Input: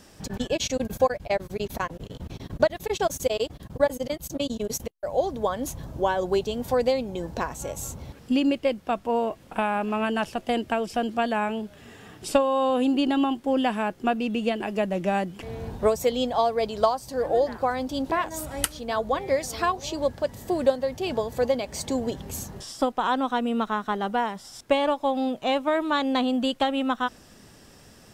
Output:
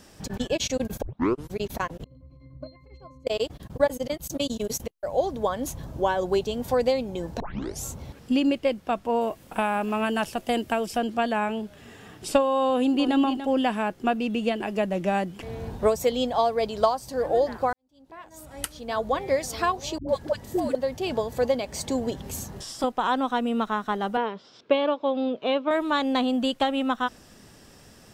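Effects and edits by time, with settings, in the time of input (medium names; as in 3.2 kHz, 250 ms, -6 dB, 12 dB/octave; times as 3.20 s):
1.02 s: tape start 0.49 s
2.04–3.27 s: pitch-class resonator C, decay 0.32 s
4.27–4.73 s: treble shelf 4.3 kHz +6.5 dB
7.40 s: tape start 0.44 s
9.21–10.98 s: treble shelf 8.9 kHz +11.5 dB
12.70–13.17 s: echo throw 290 ms, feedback 10%, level -10 dB
17.73–19.04 s: fade in quadratic
19.98–20.75 s: phase dispersion highs, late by 105 ms, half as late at 400 Hz
22.24–22.84 s: three bands compressed up and down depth 40%
24.17–25.71 s: cabinet simulation 190–4000 Hz, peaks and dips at 440 Hz +8 dB, 790 Hz -7 dB, 1.9 kHz -6 dB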